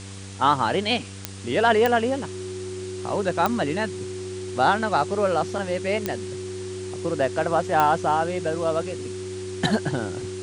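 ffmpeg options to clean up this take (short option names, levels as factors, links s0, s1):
-af "adeclick=t=4,bandreject=f=97.2:t=h:w=4,bandreject=f=194.4:t=h:w=4,bandreject=f=291.6:t=h:w=4,bandreject=f=388.8:t=h:w=4,bandreject=f=486:t=h:w=4,bandreject=f=370:w=30,afwtdn=0.0089"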